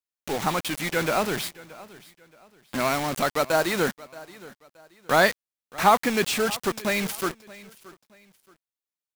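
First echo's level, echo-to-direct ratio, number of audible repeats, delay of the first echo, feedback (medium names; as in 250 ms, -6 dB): -20.0 dB, -19.5 dB, 2, 625 ms, 31%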